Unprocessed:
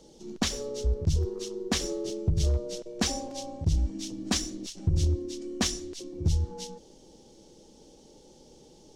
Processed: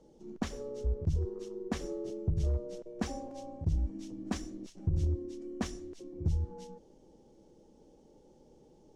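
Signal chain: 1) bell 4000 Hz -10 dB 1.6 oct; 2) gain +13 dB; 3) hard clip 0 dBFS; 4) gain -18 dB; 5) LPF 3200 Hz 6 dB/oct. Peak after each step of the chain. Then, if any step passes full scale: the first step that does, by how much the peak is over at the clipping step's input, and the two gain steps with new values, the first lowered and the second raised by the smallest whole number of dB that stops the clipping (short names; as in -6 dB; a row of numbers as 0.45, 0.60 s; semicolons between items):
-17.0, -4.0, -4.0, -22.0, -22.0 dBFS; no overload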